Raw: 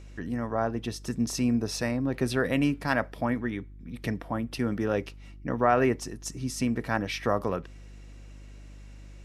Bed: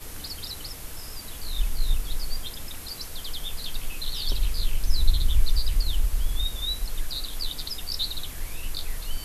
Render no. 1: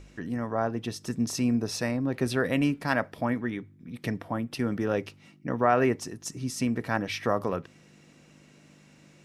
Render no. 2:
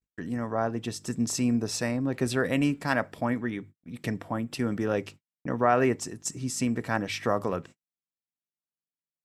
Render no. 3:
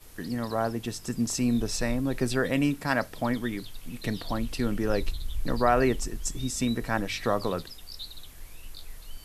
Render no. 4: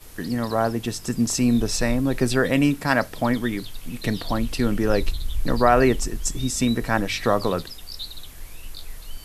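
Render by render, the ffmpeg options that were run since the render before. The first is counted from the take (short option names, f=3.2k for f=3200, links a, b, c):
-af "bandreject=f=50:t=h:w=4,bandreject=f=100:t=h:w=4"
-af "agate=range=-55dB:threshold=-44dB:ratio=16:detection=peak,equalizer=f=7.6k:w=5:g=10.5"
-filter_complex "[1:a]volume=-11.5dB[a];[0:a][a]amix=inputs=2:normalize=0"
-af "volume=6dB,alimiter=limit=-3dB:level=0:latency=1"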